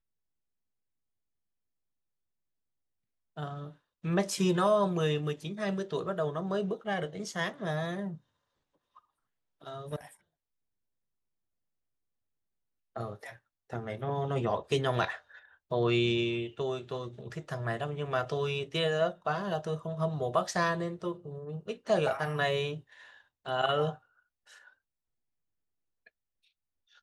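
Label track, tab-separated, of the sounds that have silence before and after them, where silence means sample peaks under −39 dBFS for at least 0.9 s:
3.370000	8.150000	sound
9.670000	10.050000	sound
12.960000	23.940000	sound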